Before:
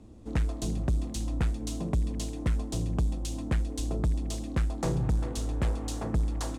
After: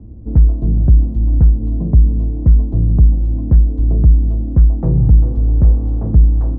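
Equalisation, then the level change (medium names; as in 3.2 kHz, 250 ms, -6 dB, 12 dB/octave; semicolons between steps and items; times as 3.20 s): low-pass 1.2 kHz 12 dB/octave; tilt shelf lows +9.5 dB, about 710 Hz; peaking EQ 65 Hz +8.5 dB 2.6 oct; +1.5 dB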